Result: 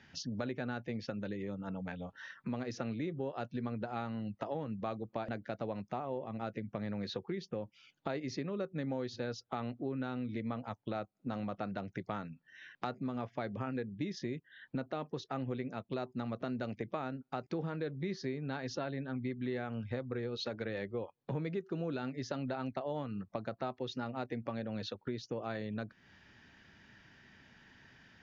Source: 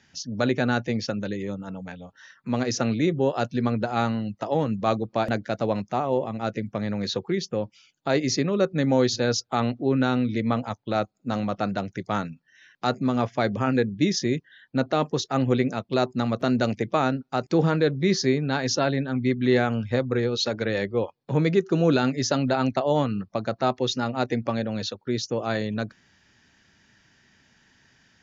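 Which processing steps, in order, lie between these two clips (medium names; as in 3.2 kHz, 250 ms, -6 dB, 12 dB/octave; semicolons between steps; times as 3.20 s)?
low-pass 3.5 kHz 12 dB/octave; compression 4:1, threshold -39 dBFS, peak gain reduction 19.5 dB; trim +1 dB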